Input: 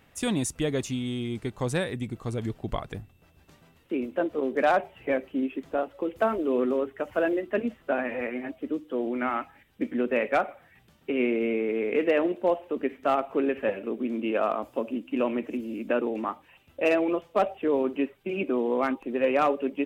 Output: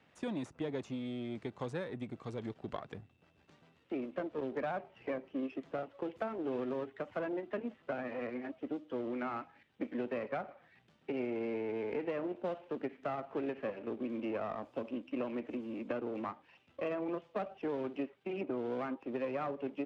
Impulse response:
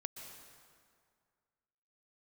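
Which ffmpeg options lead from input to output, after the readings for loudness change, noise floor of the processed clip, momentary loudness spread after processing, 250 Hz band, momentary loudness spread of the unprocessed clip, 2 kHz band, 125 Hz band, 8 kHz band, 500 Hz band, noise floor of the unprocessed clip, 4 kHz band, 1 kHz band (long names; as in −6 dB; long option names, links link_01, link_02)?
−11.5 dB, −69 dBFS, 6 LU, −10.0 dB, 9 LU, −13.5 dB, −11.0 dB, can't be measured, −11.5 dB, −61 dBFS, −14.0 dB, −12.5 dB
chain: -filter_complex "[0:a]aeval=exprs='if(lt(val(0),0),0.447*val(0),val(0))':channel_layout=same,acrossover=split=270|1600[link_01][link_02][link_03];[link_01]acompressor=threshold=-36dB:ratio=4[link_04];[link_02]acompressor=threshold=-32dB:ratio=4[link_05];[link_03]acompressor=threshold=-49dB:ratio=4[link_06];[link_04][link_05][link_06]amix=inputs=3:normalize=0,highpass=120,lowpass=4900,volume=-4dB"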